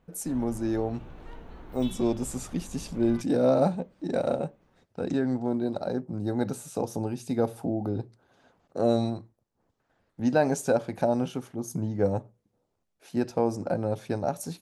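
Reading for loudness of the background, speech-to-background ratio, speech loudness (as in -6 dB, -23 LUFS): -47.0 LUFS, 18.0 dB, -29.0 LUFS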